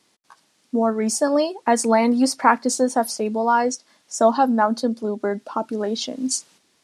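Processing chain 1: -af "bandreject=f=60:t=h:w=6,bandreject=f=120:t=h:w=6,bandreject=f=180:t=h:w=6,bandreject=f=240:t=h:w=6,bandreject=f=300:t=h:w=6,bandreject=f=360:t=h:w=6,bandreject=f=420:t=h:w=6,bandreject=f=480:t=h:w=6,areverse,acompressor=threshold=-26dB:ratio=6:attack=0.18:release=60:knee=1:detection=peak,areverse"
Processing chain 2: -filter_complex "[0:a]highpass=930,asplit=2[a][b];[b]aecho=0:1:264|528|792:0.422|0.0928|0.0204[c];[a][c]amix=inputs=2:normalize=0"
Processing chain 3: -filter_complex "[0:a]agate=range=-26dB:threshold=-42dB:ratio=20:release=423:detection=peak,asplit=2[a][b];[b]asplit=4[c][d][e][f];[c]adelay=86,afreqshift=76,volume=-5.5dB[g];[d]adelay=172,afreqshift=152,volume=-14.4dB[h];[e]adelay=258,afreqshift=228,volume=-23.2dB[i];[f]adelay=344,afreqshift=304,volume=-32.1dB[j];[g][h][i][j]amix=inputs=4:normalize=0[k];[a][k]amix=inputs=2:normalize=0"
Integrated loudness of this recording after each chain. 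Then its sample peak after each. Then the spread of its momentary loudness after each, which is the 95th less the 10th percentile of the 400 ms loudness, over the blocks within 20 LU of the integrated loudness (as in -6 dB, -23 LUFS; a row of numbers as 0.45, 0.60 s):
-31.5, -25.5, -20.0 LUFS; -21.5, -3.5, -1.5 dBFS; 4, 11, 9 LU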